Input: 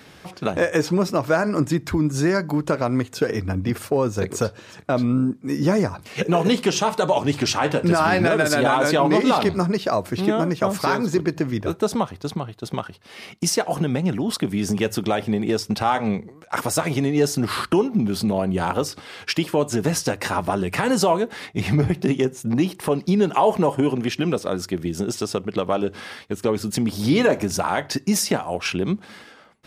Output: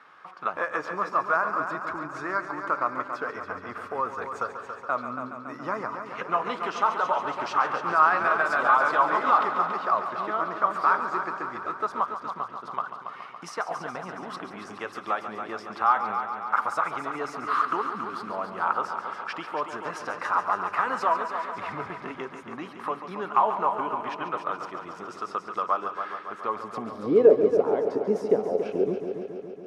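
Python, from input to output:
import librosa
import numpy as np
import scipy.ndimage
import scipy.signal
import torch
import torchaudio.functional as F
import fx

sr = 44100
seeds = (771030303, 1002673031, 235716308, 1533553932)

y = fx.filter_sweep_bandpass(x, sr, from_hz=1200.0, to_hz=440.0, start_s=26.45, end_s=27.15, q=4.9)
y = fx.echo_heads(y, sr, ms=140, heads='first and second', feedback_pct=65, wet_db=-11.0)
y = y * 10.0 ** (6.5 / 20.0)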